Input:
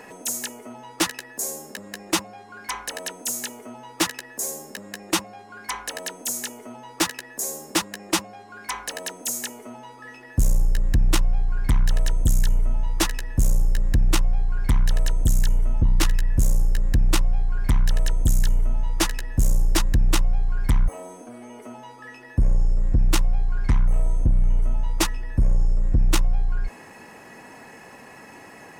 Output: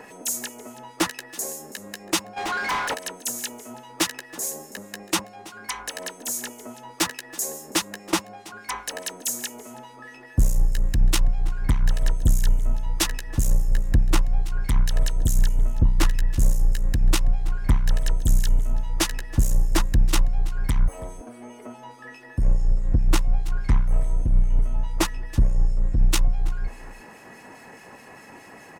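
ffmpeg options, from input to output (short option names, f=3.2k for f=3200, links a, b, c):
-filter_complex "[0:a]aecho=1:1:327:0.106,acrossover=split=2000[a][b];[a]aeval=exprs='val(0)*(1-0.5/2+0.5/2*cos(2*PI*4.8*n/s))':c=same[c];[b]aeval=exprs='val(0)*(1-0.5/2-0.5/2*cos(2*PI*4.8*n/s))':c=same[d];[c][d]amix=inputs=2:normalize=0,asplit=3[e][f][g];[e]afade=t=out:st=2.36:d=0.02[h];[f]asplit=2[i][j];[j]highpass=f=720:p=1,volume=30dB,asoftclip=type=tanh:threshold=-19dB[k];[i][k]amix=inputs=2:normalize=0,lowpass=f=3k:p=1,volume=-6dB,afade=t=in:st=2.36:d=0.02,afade=t=out:st=2.93:d=0.02[l];[g]afade=t=in:st=2.93:d=0.02[m];[h][l][m]amix=inputs=3:normalize=0,volume=1.5dB"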